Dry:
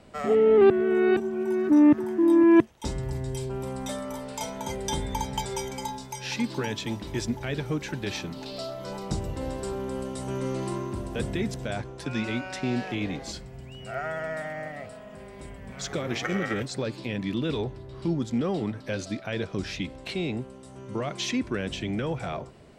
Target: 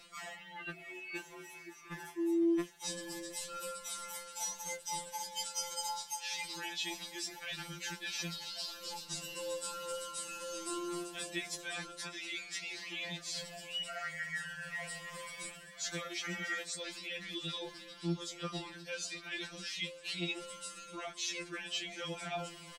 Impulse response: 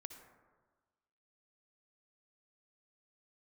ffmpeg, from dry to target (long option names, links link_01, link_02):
-af "tiltshelf=frequency=1300:gain=-10,areverse,acompressor=threshold=-44dB:ratio=4,areverse,flanger=delay=10:depth=8.6:regen=41:speed=0.24:shape=sinusoidal,aecho=1:1:708:0.119,afftfilt=real='re*2.83*eq(mod(b,8),0)':imag='im*2.83*eq(mod(b,8),0)':win_size=2048:overlap=0.75,volume=10.5dB"